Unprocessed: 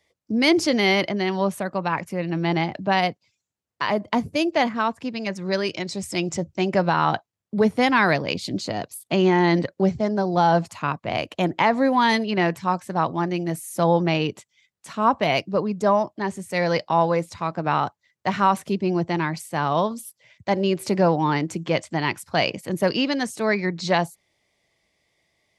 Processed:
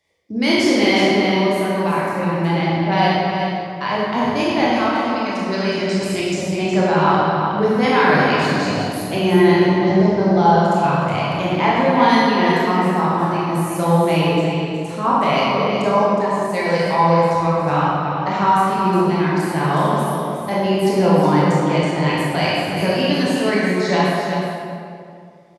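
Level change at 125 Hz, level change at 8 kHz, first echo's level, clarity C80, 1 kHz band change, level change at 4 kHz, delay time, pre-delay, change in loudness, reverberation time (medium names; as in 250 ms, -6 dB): +7.5 dB, +3.0 dB, -6.0 dB, -2.0 dB, +6.0 dB, +4.5 dB, 366 ms, 19 ms, +5.5 dB, 2.3 s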